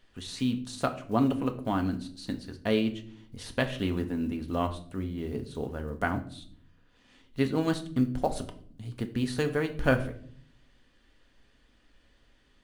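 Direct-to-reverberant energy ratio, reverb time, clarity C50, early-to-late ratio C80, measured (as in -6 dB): 5.5 dB, 0.55 s, 13.5 dB, 17.5 dB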